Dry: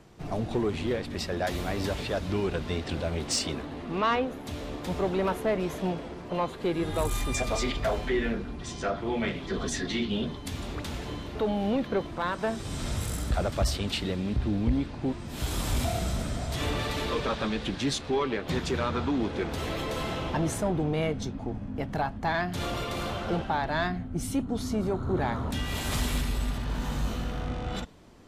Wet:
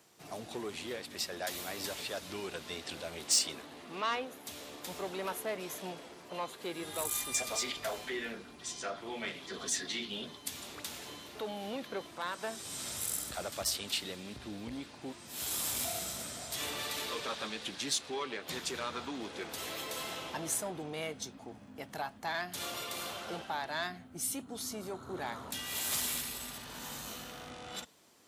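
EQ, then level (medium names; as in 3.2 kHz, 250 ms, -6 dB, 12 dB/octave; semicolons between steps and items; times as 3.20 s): high-pass 67 Hz; RIAA curve recording; -8.0 dB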